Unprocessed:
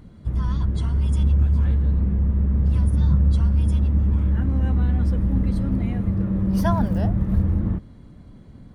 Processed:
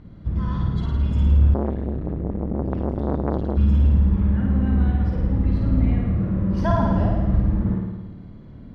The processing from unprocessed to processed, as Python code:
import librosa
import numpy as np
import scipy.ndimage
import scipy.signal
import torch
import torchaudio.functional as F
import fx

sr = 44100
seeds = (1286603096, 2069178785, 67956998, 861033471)

y = fx.air_absorb(x, sr, metres=170.0)
y = fx.room_flutter(y, sr, wall_m=9.3, rt60_s=1.2)
y = fx.transformer_sat(y, sr, knee_hz=590.0, at=(1.54, 3.57))